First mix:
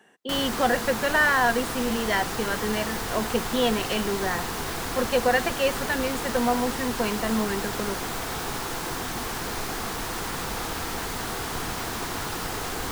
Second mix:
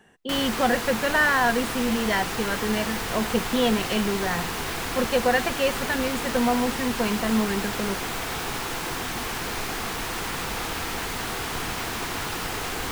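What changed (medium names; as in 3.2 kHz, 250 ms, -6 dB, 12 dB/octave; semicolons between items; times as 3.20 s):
speech: remove high-pass 240 Hz; background: add peaking EQ 2.5 kHz +5 dB 1 oct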